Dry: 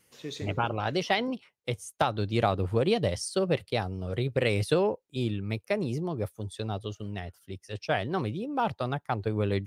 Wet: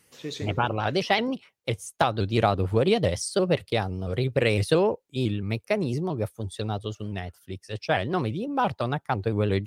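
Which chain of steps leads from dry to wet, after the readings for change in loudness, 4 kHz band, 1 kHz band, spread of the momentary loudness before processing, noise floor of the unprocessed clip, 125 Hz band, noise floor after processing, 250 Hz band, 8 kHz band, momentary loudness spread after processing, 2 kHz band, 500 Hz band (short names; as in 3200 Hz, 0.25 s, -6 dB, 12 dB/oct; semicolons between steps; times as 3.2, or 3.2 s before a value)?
+3.5 dB, +3.5 dB, +3.5 dB, 10 LU, -71 dBFS, +3.5 dB, -68 dBFS, +3.5 dB, +4.0 dB, 10 LU, +3.5 dB, +3.5 dB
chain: shaped vibrato saw up 5.9 Hz, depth 100 cents; gain +3.5 dB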